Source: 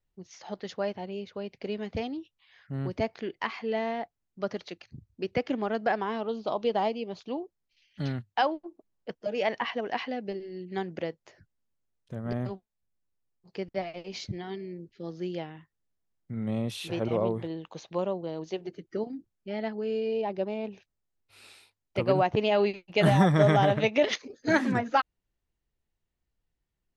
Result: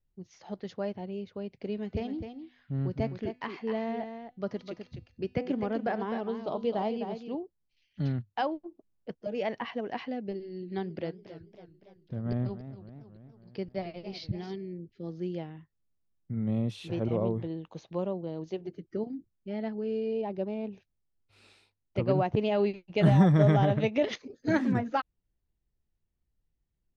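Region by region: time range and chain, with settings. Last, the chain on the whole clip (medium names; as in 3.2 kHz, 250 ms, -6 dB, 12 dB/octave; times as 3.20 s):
1.68–7.35 s: de-hum 249.3 Hz, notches 34 + delay 256 ms -8 dB
10.35–14.56 s: resonant high shelf 5.9 kHz -7.5 dB, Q 3 + modulated delay 278 ms, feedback 59%, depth 169 cents, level -13 dB
whole clip: low-pass 7.4 kHz 12 dB/octave; bass shelf 420 Hz +11 dB; trim -7.5 dB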